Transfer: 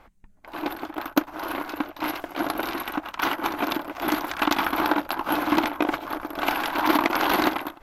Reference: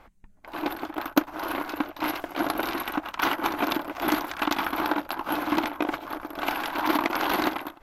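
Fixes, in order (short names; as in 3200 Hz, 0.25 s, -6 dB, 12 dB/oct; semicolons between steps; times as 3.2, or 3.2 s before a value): gain correction -3.5 dB, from 4.23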